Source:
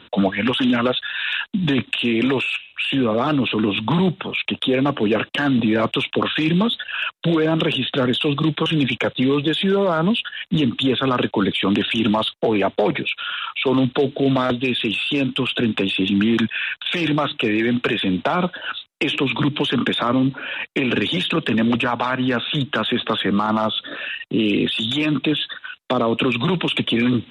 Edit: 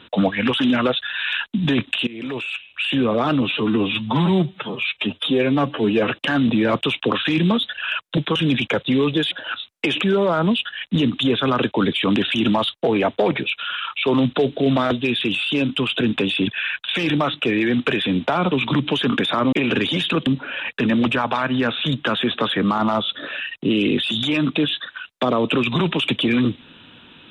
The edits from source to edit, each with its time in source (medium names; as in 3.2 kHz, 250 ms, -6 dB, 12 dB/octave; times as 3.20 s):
2.07–2.84 s: fade in linear, from -21 dB
3.42–5.21 s: stretch 1.5×
7.28–8.48 s: delete
16.07–16.45 s: delete
18.49–19.20 s: move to 9.62 s
20.21–20.73 s: move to 21.47 s